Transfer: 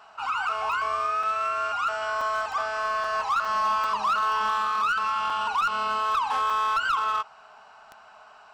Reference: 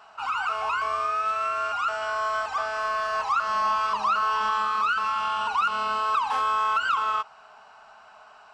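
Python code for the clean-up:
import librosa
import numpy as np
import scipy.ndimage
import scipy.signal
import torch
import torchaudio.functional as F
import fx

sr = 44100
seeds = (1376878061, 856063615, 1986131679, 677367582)

y = fx.fix_declip(x, sr, threshold_db=-19.5)
y = fx.fix_declick_ar(y, sr, threshold=10.0)
y = fx.fix_interpolate(y, sr, at_s=(1.23, 2.21, 3.04, 3.45, 3.84, 5.3, 6.5), length_ms=3.2)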